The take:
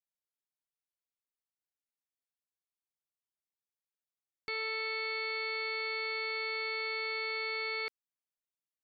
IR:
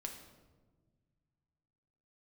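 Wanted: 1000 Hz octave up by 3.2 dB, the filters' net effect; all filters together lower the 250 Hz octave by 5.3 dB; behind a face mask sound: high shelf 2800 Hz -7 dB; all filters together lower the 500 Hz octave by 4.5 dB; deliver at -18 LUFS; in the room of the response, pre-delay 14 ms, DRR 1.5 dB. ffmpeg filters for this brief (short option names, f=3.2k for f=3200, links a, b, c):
-filter_complex "[0:a]equalizer=f=250:t=o:g=-8.5,equalizer=f=500:t=o:g=-3.5,equalizer=f=1k:t=o:g=7.5,asplit=2[a][b];[1:a]atrim=start_sample=2205,adelay=14[c];[b][c]afir=irnorm=-1:irlink=0,volume=1dB[d];[a][d]amix=inputs=2:normalize=0,highshelf=f=2.8k:g=-7,volume=16.5dB"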